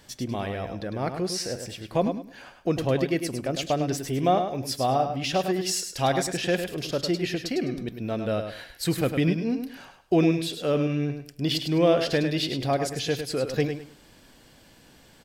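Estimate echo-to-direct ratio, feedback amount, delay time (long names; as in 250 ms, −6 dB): −7.0 dB, 24%, 103 ms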